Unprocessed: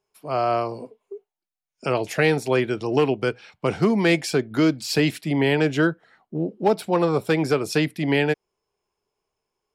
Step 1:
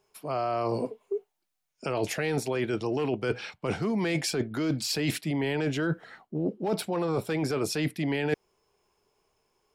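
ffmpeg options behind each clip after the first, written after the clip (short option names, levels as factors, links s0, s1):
-af "alimiter=limit=0.133:level=0:latency=1:release=10,areverse,acompressor=threshold=0.0224:ratio=12,areverse,volume=2.51"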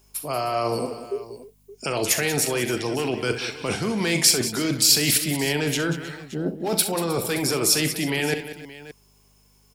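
-filter_complex "[0:a]aeval=exprs='val(0)+0.000794*(sin(2*PI*50*n/s)+sin(2*PI*2*50*n/s)/2+sin(2*PI*3*50*n/s)/3+sin(2*PI*4*50*n/s)/4+sin(2*PI*5*50*n/s)/5)':c=same,asplit=2[s0][s1];[s1]aecho=0:1:41|65|187|312|572:0.224|0.251|0.237|0.119|0.141[s2];[s0][s2]amix=inputs=2:normalize=0,crystalizer=i=4.5:c=0,volume=1.26"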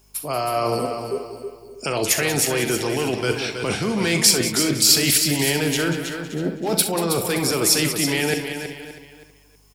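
-af "aecho=1:1:322|644|966:0.398|0.0995|0.0249,volume=1.26"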